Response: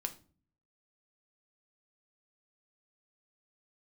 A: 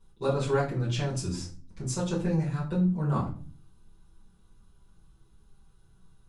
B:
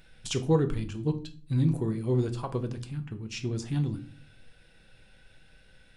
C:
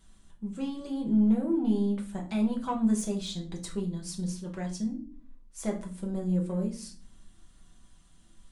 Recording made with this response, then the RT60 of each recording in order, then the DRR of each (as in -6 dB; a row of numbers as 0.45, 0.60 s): B; 0.40, 0.40, 0.40 s; -10.0, 5.5, -1.0 dB